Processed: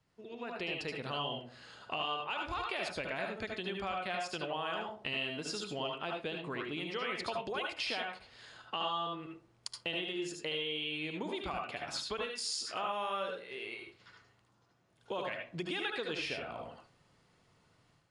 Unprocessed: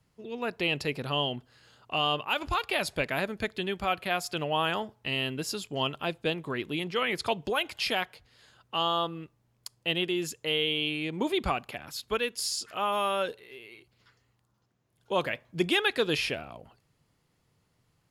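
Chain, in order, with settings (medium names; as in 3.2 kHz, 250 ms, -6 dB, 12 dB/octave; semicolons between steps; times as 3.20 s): treble shelf 5.1 kHz -6.5 dB; tape echo 63 ms, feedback 40%, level -12 dB, low-pass 1 kHz; compression 5:1, threshold -41 dBFS, peak gain reduction 18 dB; elliptic low-pass 9.6 kHz, stop band 40 dB; bass shelf 280 Hz -6 dB; reverberation RT60 0.20 s, pre-delay 71 ms, DRR 1.5 dB; level rider gain up to 8 dB; trim -2.5 dB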